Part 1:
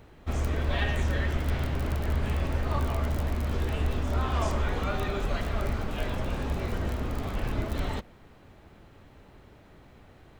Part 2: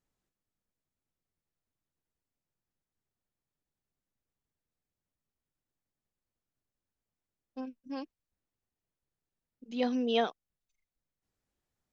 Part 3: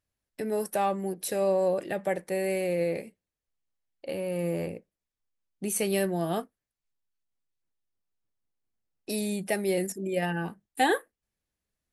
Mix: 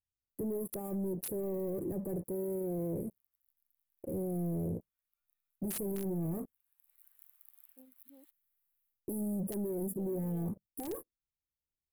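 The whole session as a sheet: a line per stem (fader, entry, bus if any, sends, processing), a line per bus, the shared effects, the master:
−14.5 dB, 0.30 s, no send, downward compressor, threshold −28 dBFS, peak gain reduction 6.5 dB; Butterworth high-pass 1,300 Hz 36 dB per octave; automatic ducking −21 dB, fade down 0.20 s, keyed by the third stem
−20.0 dB, 0.20 s, no send, no processing
−1.5 dB, 0.00 s, no send, drawn EQ curve 110 Hz 0 dB, 260 Hz −11 dB, 370 Hz −8 dB, 640 Hz −24 dB, 1,100 Hz −1 dB, 2,000 Hz −20 dB, 4,300 Hz −15 dB, 13,000 Hz −25 dB; leveller curve on the samples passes 5; flat-topped bell 4,000 Hz −14.5 dB 1.3 octaves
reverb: not used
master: drawn EQ curve 600 Hz 0 dB, 1,300 Hz −25 dB, 6,200 Hz −17 dB, 12,000 Hz +15 dB; wrap-around overflow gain 23 dB; brickwall limiter −31 dBFS, peak gain reduction 8 dB

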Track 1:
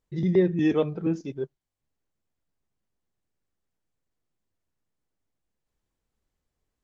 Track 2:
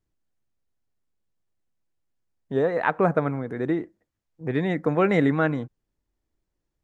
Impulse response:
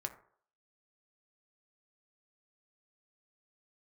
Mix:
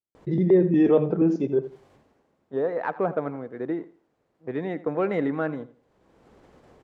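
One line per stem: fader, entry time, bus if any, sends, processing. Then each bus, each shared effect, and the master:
+3.0 dB, 0.15 s, no send, echo send −14 dB, envelope flattener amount 50%; automatic ducking −22 dB, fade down 0.55 s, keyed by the second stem
−6.5 dB, 0.00 s, no send, echo send −17 dB, noise gate −31 dBFS, range −8 dB; high-shelf EQ 2,400 Hz +9 dB; leveller curve on the samples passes 1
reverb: not used
echo: repeating echo 83 ms, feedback 26%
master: resonant band-pass 490 Hz, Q 0.67

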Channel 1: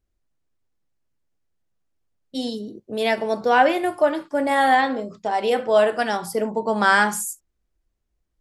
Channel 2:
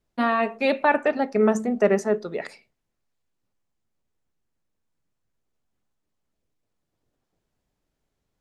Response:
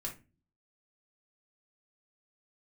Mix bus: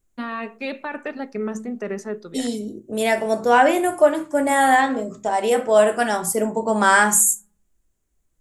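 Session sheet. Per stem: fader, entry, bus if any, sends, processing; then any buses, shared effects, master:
−1.5 dB, 0.00 s, send −3.5 dB, high shelf with overshoot 5,800 Hz +7 dB, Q 3
−3.5 dB, 0.00 s, no send, parametric band 690 Hz −7.5 dB 0.77 octaves; brickwall limiter −14.5 dBFS, peak gain reduction 6.5 dB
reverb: on, RT60 0.30 s, pre-delay 3 ms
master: no processing

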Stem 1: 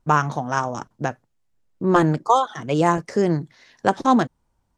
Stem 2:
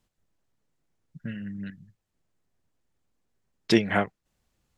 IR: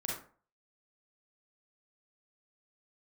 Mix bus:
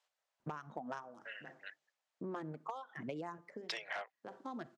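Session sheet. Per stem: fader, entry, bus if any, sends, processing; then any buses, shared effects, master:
−6.0 dB, 0.40 s, send −24 dB, adaptive Wiener filter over 9 samples; reverb reduction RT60 1.1 s; downward compressor 6 to 1, threshold −26 dBFS, peak gain reduction 14.5 dB; automatic ducking −23 dB, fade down 0.25 s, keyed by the second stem
−1.0 dB, 0.00 s, no send, Butterworth high-pass 560 Hz 36 dB per octave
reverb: on, RT60 0.45 s, pre-delay 33 ms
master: hard clipping −22 dBFS, distortion −16 dB; band-pass filter 190–6,800 Hz; downward compressor 10 to 1, threshold −39 dBFS, peak gain reduction 15 dB

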